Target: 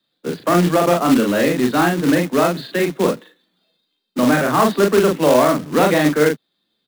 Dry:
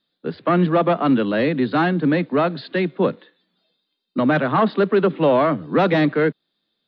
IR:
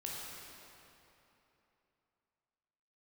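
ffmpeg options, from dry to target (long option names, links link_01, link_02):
-filter_complex "[0:a]acrossover=split=150|310|1600[link_01][link_02][link_03][link_04];[link_01]acompressor=threshold=-39dB:ratio=6[link_05];[link_05][link_02][link_03][link_04]amix=inputs=4:normalize=0,asplit=2[link_06][link_07];[link_07]adelay=40,volume=-3dB[link_08];[link_06][link_08]amix=inputs=2:normalize=0,acrusher=bits=3:mode=log:mix=0:aa=0.000001,volume=1dB"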